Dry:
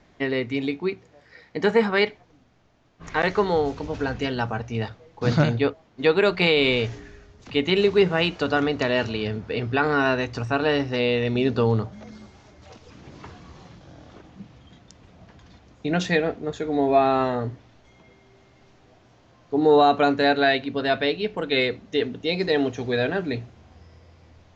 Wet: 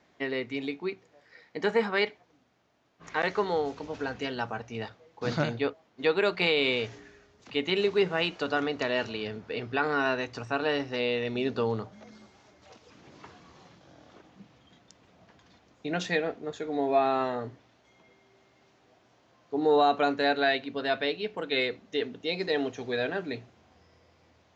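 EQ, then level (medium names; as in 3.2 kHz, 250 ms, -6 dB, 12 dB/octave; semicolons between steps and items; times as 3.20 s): high-pass 280 Hz 6 dB/octave; -5.0 dB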